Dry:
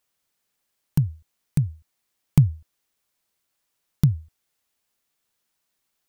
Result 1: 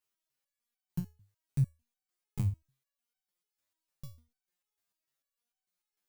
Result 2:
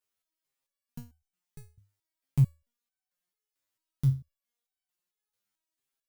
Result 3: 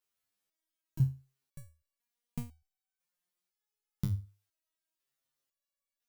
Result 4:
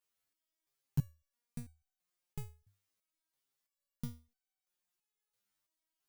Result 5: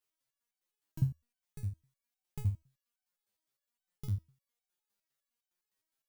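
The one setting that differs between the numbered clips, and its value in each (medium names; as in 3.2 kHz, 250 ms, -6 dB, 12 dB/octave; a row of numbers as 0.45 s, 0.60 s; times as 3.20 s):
resonator arpeggio, rate: 6.7 Hz, 4.5 Hz, 2 Hz, 3 Hz, 9.8 Hz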